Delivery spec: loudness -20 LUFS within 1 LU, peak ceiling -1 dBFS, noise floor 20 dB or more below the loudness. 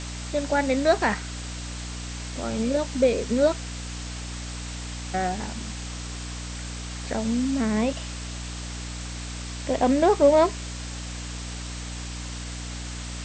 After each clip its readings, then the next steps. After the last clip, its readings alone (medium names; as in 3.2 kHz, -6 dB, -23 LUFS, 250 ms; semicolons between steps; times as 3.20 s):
hum 60 Hz; highest harmonic 300 Hz; hum level -33 dBFS; noise floor -35 dBFS; noise floor target -47 dBFS; loudness -27.0 LUFS; peak level -6.5 dBFS; loudness target -20.0 LUFS
-> de-hum 60 Hz, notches 5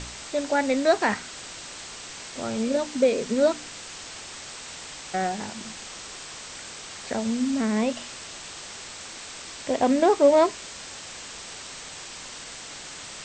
hum not found; noise floor -40 dBFS; noise floor target -48 dBFS
-> noise reduction 8 dB, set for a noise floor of -40 dBFS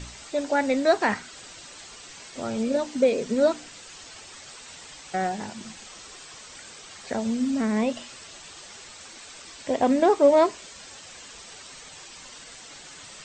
noise floor -45 dBFS; loudness -24.5 LUFS; peak level -7.0 dBFS; loudness target -20.0 LUFS
-> trim +4.5 dB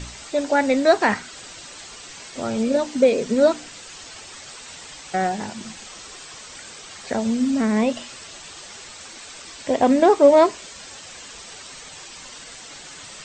loudness -20.0 LUFS; peak level -2.5 dBFS; noise floor -41 dBFS